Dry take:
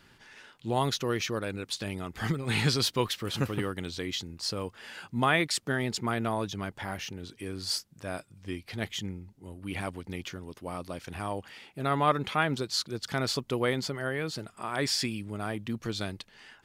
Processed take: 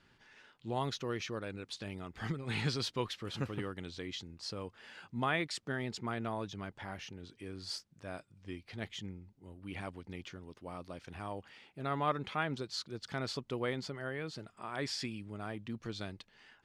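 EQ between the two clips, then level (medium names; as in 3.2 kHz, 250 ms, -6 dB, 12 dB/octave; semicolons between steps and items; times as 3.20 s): distance through air 57 m; -7.5 dB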